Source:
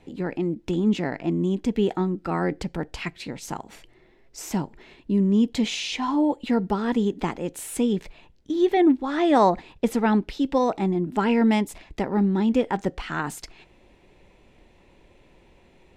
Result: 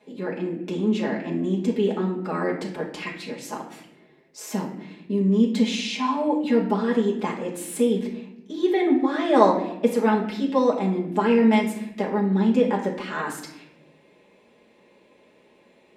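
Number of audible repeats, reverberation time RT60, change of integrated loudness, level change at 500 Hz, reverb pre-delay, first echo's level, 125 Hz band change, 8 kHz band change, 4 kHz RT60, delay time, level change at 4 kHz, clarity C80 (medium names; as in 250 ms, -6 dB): no echo, 0.85 s, +1.0 dB, +2.5 dB, 5 ms, no echo, -1.0 dB, -0.5 dB, 0.55 s, no echo, 0.0 dB, 10.5 dB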